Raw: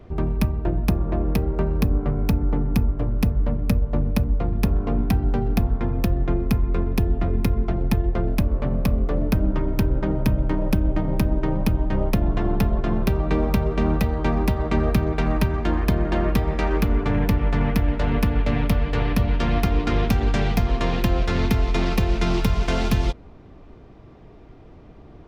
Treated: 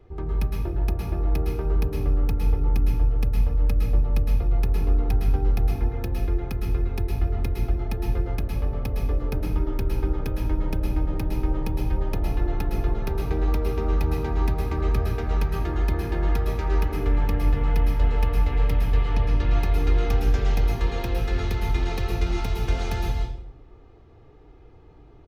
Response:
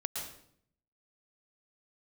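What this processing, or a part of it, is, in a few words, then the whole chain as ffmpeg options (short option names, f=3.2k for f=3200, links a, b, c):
microphone above a desk: -filter_complex "[0:a]aecho=1:1:2.4:0.55[a];[1:a]atrim=start_sample=2205[b];[a][b]afir=irnorm=-1:irlink=0,asettb=1/sr,asplit=3[c][d][e];[c]atrim=end=19.164[f];[d]atrim=start=19.16:end=19.58,asetpts=PTS-STARTPTS,afade=t=in:d=0.004:c=qsin,afade=t=out:st=0.416:d=0.004:c=qsin,lowpass=6.6k[g];[e]atrim=start=19.576[h];[f][g]acrossfade=d=0.004:c1=hsin:c2=qsin[i];[i][h]acrossfade=d=0.004:c1=qsin:c2=hsin,volume=-8.5dB"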